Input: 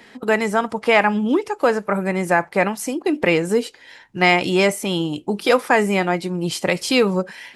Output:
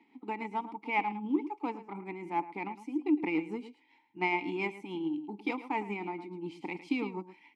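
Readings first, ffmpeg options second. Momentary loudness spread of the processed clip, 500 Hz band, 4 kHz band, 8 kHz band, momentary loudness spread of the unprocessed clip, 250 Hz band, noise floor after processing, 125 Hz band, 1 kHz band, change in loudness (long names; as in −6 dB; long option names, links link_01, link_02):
11 LU, −21.0 dB, −23.5 dB, below −35 dB, 7 LU, −12.0 dB, −67 dBFS, −21.0 dB, −13.0 dB, −15.5 dB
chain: -filter_complex "[0:a]asplit=2[link_01][link_02];[link_02]aecho=0:1:109:0.266[link_03];[link_01][link_03]amix=inputs=2:normalize=0,tremolo=f=7.1:d=0.39,aeval=exprs='0.75*(cos(1*acos(clip(val(0)/0.75,-1,1)))-cos(1*PI/2))+0.0376*(cos(7*acos(clip(val(0)/0.75,-1,1)))-cos(7*PI/2))':channel_layout=same,asplit=3[link_04][link_05][link_06];[link_04]bandpass=frequency=300:width_type=q:width=8,volume=0dB[link_07];[link_05]bandpass=frequency=870:width_type=q:width=8,volume=-6dB[link_08];[link_06]bandpass=frequency=2240:width_type=q:width=8,volume=-9dB[link_09];[link_07][link_08][link_09]amix=inputs=3:normalize=0"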